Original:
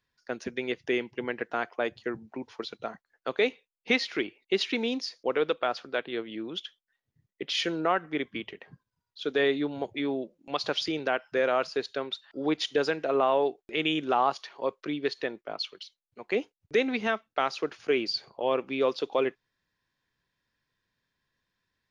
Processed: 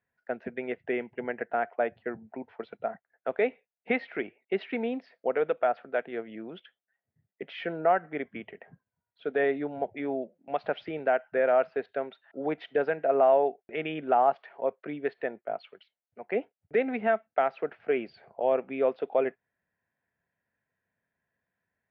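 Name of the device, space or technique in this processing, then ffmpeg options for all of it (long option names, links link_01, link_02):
bass cabinet: -af "highpass=88,equalizer=frequency=130:width_type=q:width=4:gain=-5,equalizer=frequency=320:width_type=q:width=4:gain=-7,equalizer=frequency=680:width_type=q:width=4:gain=8,equalizer=frequency=1100:width_type=q:width=4:gain=-9,lowpass=frequency=2100:width=0.5412,lowpass=frequency=2100:width=1.3066"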